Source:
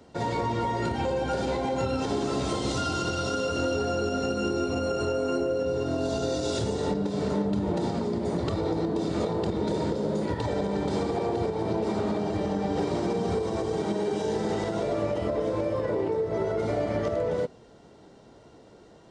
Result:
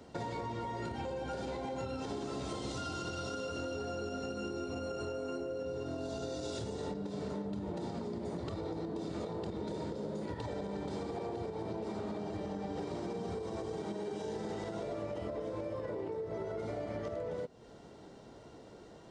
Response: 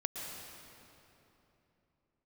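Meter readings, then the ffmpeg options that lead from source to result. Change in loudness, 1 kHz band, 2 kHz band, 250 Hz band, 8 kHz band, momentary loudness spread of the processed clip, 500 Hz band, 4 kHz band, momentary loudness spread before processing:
-11.5 dB, -11.0 dB, -11.0 dB, -11.5 dB, -11.0 dB, 1 LU, -11.5 dB, -11.0 dB, 1 LU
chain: -af "acompressor=threshold=0.0141:ratio=4,volume=0.891"

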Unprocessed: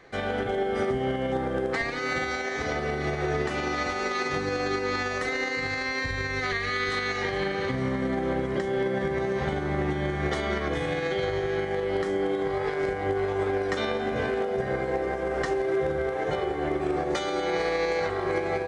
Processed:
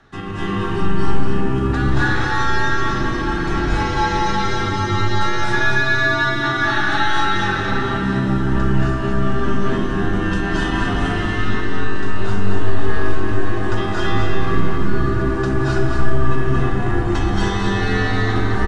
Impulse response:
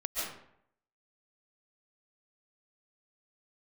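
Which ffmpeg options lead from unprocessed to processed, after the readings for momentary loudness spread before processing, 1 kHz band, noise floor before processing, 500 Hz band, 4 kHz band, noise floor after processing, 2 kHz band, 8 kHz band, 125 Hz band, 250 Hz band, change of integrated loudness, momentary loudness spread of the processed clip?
2 LU, +9.0 dB, -31 dBFS, +1.5 dB, +8.5 dB, -21 dBFS, +9.0 dB, +7.0 dB, +14.5 dB, +10.0 dB, +8.0 dB, 5 LU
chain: -filter_complex "[0:a]aecho=1:1:228:0.562[s0];[1:a]atrim=start_sample=2205,asetrate=24255,aresample=44100[s1];[s0][s1]afir=irnorm=-1:irlink=0,afreqshift=-390"

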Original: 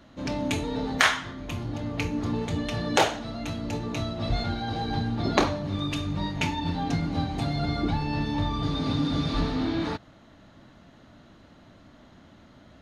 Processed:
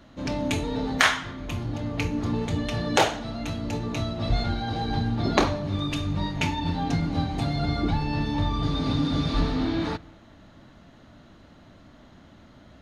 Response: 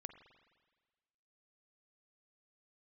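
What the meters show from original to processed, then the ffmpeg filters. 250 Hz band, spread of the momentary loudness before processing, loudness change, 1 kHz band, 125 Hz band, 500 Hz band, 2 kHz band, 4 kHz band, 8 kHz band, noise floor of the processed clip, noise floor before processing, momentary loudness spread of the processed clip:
+1.0 dB, 8 LU, +1.5 dB, +1.0 dB, +2.0 dB, +1.0 dB, +1.0 dB, +1.0 dB, +1.0 dB, -52 dBFS, -54 dBFS, 8 LU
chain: -filter_complex "[0:a]asplit=2[s0][s1];[1:a]atrim=start_sample=2205,lowshelf=f=120:g=12[s2];[s1][s2]afir=irnorm=-1:irlink=0,volume=0.473[s3];[s0][s3]amix=inputs=2:normalize=0,volume=0.891"

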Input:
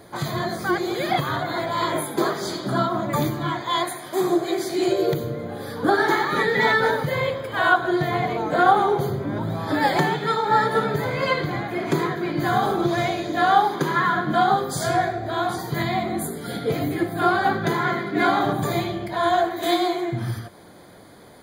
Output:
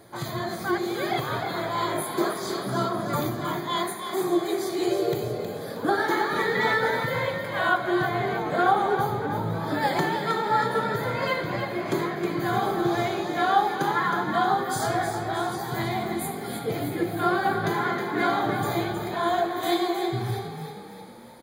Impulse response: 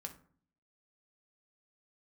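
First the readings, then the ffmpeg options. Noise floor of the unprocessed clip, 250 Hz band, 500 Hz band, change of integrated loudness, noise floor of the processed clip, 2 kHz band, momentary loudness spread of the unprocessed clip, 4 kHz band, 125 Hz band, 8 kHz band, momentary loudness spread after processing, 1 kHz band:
-42 dBFS, -3.5 dB, -3.5 dB, -3.5 dB, -36 dBFS, -3.5 dB, 8 LU, -3.5 dB, -4.0 dB, -2.5 dB, 7 LU, -3.5 dB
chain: -filter_complex "[0:a]bandreject=f=50:t=h:w=6,bandreject=f=100:t=h:w=6,bandreject=f=150:t=h:w=6,asplit=7[s0][s1][s2][s3][s4][s5][s6];[s1]adelay=316,afreqshift=38,volume=0.422[s7];[s2]adelay=632,afreqshift=76,volume=0.216[s8];[s3]adelay=948,afreqshift=114,volume=0.11[s9];[s4]adelay=1264,afreqshift=152,volume=0.0562[s10];[s5]adelay=1580,afreqshift=190,volume=0.0285[s11];[s6]adelay=1896,afreqshift=228,volume=0.0146[s12];[s0][s7][s8][s9][s10][s11][s12]amix=inputs=7:normalize=0,asplit=2[s13][s14];[1:a]atrim=start_sample=2205,asetrate=29988,aresample=44100,highshelf=f=9500:g=10.5[s15];[s14][s15]afir=irnorm=-1:irlink=0,volume=0.631[s16];[s13][s16]amix=inputs=2:normalize=0,volume=0.398"

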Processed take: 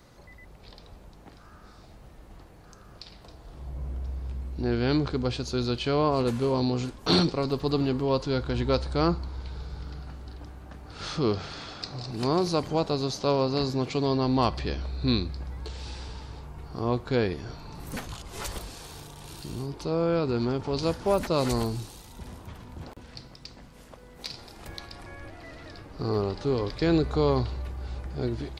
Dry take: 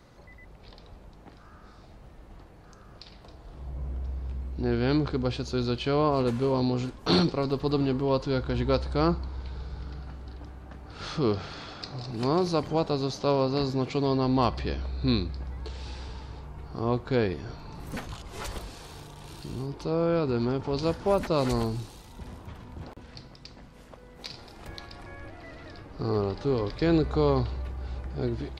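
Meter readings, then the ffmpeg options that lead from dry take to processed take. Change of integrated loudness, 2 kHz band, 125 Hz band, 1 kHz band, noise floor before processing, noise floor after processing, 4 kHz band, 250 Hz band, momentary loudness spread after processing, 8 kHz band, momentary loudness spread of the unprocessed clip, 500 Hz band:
0.0 dB, +1.0 dB, 0.0 dB, 0.0 dB, -51 dBFS, -51 dBFS, +2.5 dB, 0.0 dB, 19 LU, +5.0 dB, 19 LU, 0.0 dB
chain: -af "highshelf=f=5600:g=8"

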